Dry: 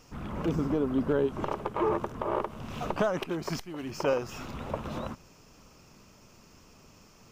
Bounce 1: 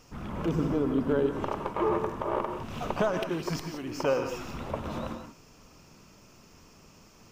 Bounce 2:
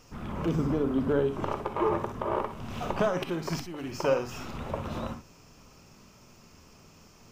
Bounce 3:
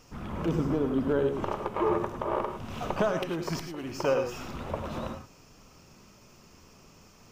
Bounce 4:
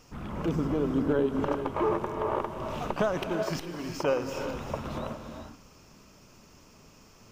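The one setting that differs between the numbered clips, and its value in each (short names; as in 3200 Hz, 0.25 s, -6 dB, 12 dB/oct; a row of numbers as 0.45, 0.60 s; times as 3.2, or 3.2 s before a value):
non-linear reverb, gate: 200, 80, 130, 440 ms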